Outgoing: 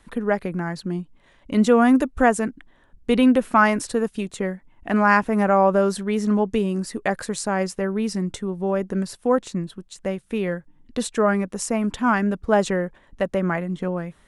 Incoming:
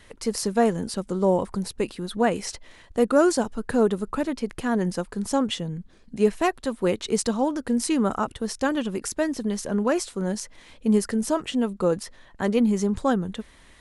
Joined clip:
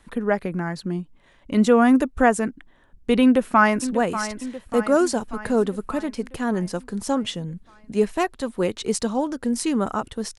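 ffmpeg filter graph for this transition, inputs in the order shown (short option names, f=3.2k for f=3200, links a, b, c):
-filter_complex "[0:a]apad=whole_dur=10.38,atrim=end=10.38,atrim=end=3.892[a];[1:a]atrim=start=2.128:end=8.62[b];[a][b]acrossfade=d=0.004:c1=hsin:c2=hsin,asplit=2[c][d];[d]afade=t=in:st=3.23:d=0.01,afade=t=out:st=3.89:d=0.01,aecho=0:1:590|1180|1770|2360|2950|3540|4130:0.266073|0.159644|0.0957861|0.0574717|0.034483|0.0206898|0.0124139[e];[c][e]amix=inputs=2:normalize=0"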